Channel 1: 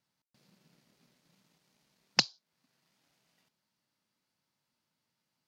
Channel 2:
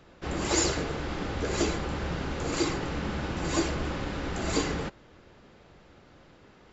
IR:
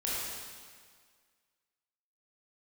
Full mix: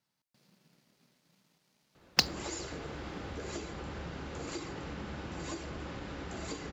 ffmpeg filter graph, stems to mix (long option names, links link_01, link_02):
-filter_complex "[0:a]acrusher=bits=4:mode=log:mix=0:aa=0.000001,volume=0dB[link_01];[1:a]acompressor=threshold=-30dB:ratio=6,adelay=1950,volume=-6.5dB[link_02];[link_01][link_02]amix=inputs=2:normalize=0,highpass=44"